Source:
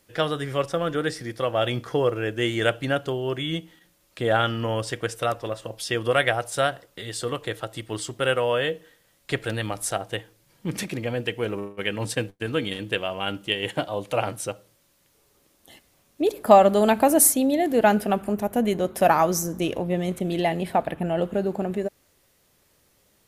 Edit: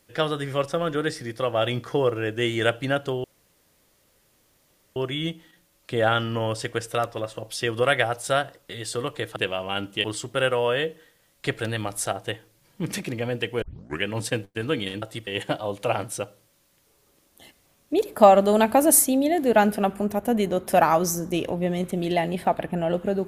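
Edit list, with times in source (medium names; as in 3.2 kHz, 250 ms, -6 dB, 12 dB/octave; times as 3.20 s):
3.24 s: insert room tone 1.72 s
7.64–7.89 s: swap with 12.87–13.55 s
11.47 s: tape start 0.42 s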